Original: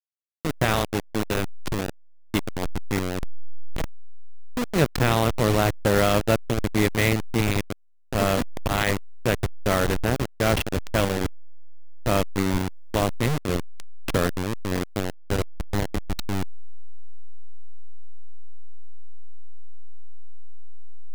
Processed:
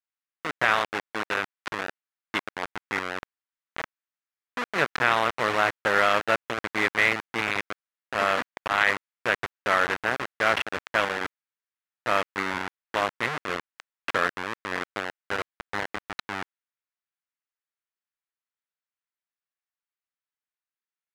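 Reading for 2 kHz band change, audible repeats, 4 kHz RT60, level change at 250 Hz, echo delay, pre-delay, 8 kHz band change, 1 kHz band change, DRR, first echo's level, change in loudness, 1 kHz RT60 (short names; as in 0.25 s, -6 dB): +5.5 dB, none, none, -11.5 dB, none, none, -9.5 dB, +2.5 dB, none, none, -1.5 dB, none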